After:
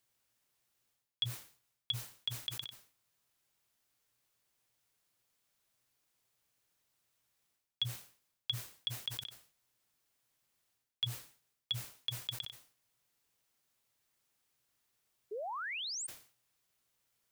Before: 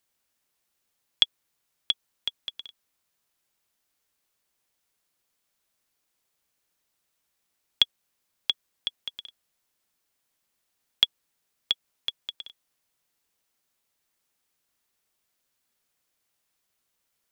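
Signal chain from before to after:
parametric band 120 Hz +11.5 dB 0.27 octaves
reversed playback
downward compressor 16 to 1, threshold −31 dBFS, peak gain reduction 16.5 dB
reversed playback
sound drawn into the spectrogram rise, 0:15.31–0:16.07, 390–9,200 Hz −38 dBFS
level that may fall only so fast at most 130 dB per second
level −2 dB

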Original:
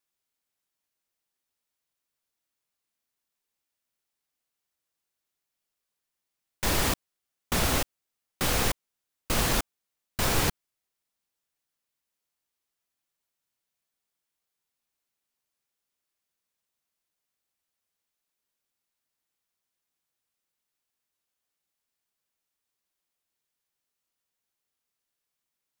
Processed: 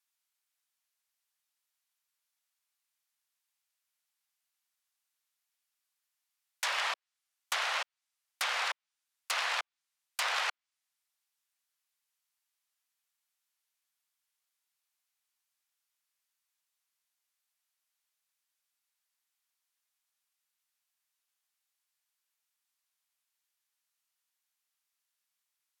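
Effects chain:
wrap-around overflow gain 17 dB
Bessel high-pass filter 1,100 Hz, order 8
treble cut that deepens with the level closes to 3,000 Hz, closed at −27.5 dBFS
level +1.5 dB

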